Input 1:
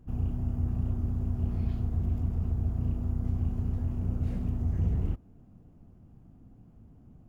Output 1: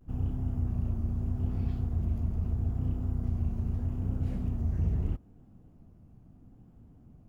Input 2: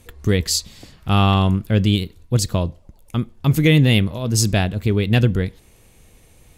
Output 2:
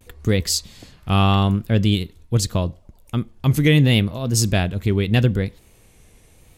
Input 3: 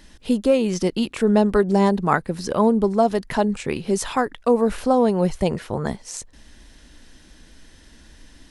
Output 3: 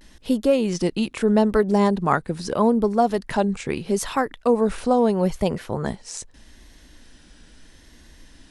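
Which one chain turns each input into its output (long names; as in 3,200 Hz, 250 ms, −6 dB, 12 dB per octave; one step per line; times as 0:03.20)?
pitch vibrato 0.78 Hz 72 cents
level −1 dB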